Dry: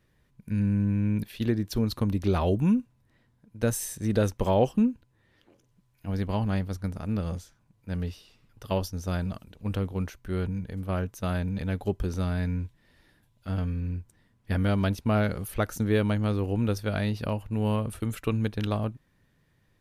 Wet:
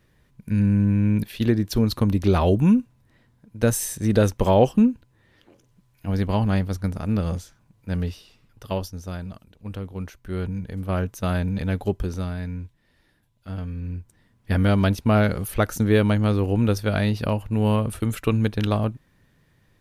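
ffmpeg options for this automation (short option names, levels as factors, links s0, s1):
-af "volume=13.3,afade=t=out:st=7.89:d=1.28:silence=0.334965,afade=t=in:st=9.83:d=1.21:silence=0.375837,afade=t=out:st=11.8:d=0.57:silence=0.446684,afade=t=in:st=13.67:d=0.95:silence=0.398107"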